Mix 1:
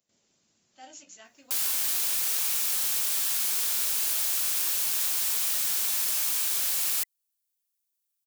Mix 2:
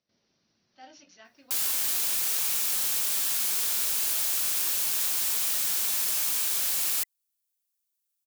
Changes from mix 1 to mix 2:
speech: add Chebyshev low-pass with heavy ripple 5,900 Hz, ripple 3 dB
master: add low-shelf EQ 420 Hz +4 dB

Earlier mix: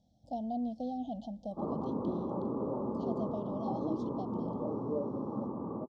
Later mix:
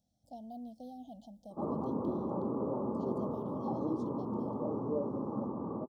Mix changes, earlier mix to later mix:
speech −10.5 dB
master: remove high-frequency loss of the air 140 metres

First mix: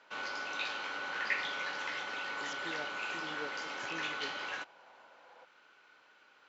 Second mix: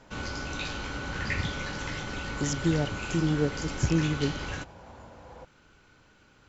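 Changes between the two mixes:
speech +7.5 dB
master: remove band-pass filter 650–4,000 Hz

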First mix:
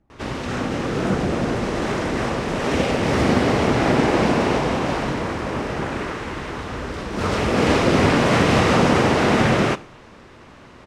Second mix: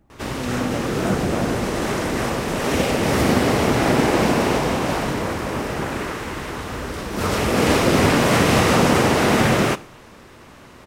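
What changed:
speech +6.0 dB
master: remove high-frequency loss of the air 71 metres

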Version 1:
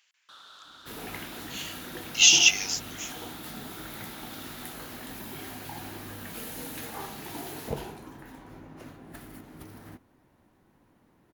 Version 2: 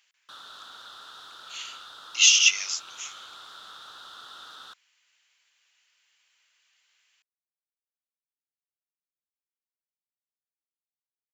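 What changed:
first sound +5.0 dB
second sound: muted

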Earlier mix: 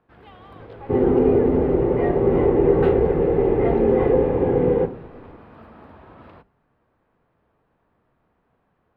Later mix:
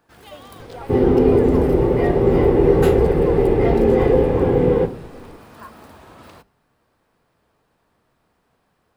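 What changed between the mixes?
speech: unmuted
second sound: add low-shelf EQ 170 Hz +7 dB
master: remove high-frequency loss of the air 480 metres

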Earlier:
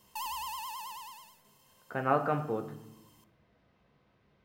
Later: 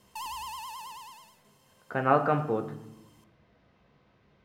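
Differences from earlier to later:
speech +4.5 dB
background: add low-pass filter 12,000 Hz 12 dB per octave

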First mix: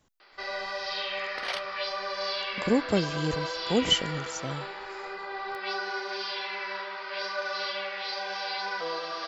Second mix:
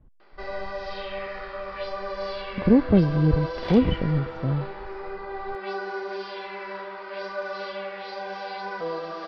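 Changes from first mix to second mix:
speech: add high-frequency loss of the air 450 metres
second sound: entry +2.20 s
master: add spectral tilt −4.5 dB per octave

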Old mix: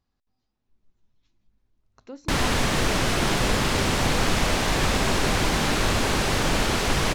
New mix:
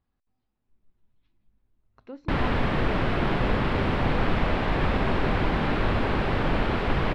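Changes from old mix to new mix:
speech: add high-shelf EQ 2,700 Hz +8 dB
master: add high-frequency loss of the air 440 metres

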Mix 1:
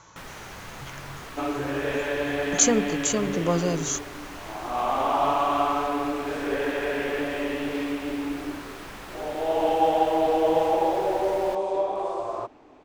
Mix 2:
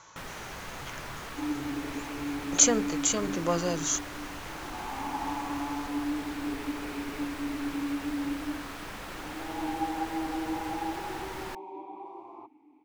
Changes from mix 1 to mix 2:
speech: add low-shelf EQ 390 Hz −9 dB
second sound: add formant filter u

